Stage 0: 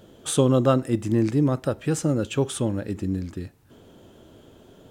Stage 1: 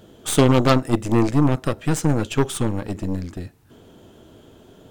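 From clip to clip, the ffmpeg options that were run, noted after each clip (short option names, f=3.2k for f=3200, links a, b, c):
-af "aeval=exprs='0.531*(cos(1*acos(clip(val(0)/0.531,-1,1)))-cos(1*PI/2))+0.15*(cos(6*acos(clip(val(0)/0.531,-1,1)))-cos(6*PI/2))+0.168*(cos(8*acos(clip(val(0)/0.531,-1,1)))-cos(8*PI/2))':c=same,bandreject=f=550:w=17,volume=2.5dB"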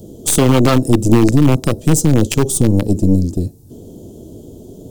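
-filter_complex "[0:a]acrossover=split=290|580|5000[a][b][c][d];[c]aeval=exprs='val(0)*gte(abs(val(0)),0.0562)':c=same[e];[a][b][e][d]amix=inputs=4:normalize=0,alimiter=level_in=14.5dB:limit=-1dB:release=50:level=0:latency=1,volume=-1dB"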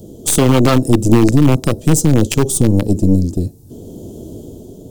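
-af "dynaudnorm=f=160:g=7:m=4.5dB"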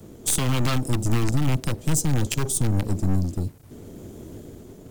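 -filter_complex "[0:a]acrossover=split=160|1300|4000[a][b][c][d];[a]acrusher=bits=7:mix=0:aa=0.000001[e];[b]aeval=exprs='(tanh(12.6*val(0)+0.5)-tanh(0.5))/12.6':c=same[f];[e][f][c][d]amix=inputs=4:normalize=0,volume=-7dB"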